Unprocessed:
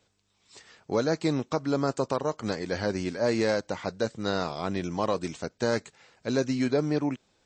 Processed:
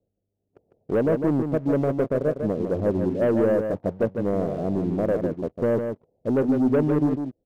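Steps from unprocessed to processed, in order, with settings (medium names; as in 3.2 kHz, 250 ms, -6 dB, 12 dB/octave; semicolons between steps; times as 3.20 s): steep low-pass 670 Hz 48 dB/octave; waveshaping leveller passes 2; delay 152 ms -6.5 dB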